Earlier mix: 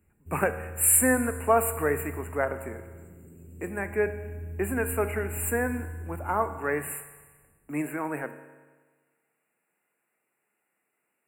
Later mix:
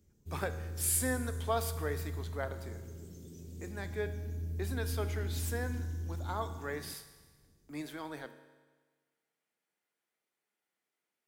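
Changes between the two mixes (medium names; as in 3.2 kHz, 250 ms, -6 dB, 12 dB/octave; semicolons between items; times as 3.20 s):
speech -11.0 dB; master: remove brick-wall FIR band-stop 2.9–7.1 kHz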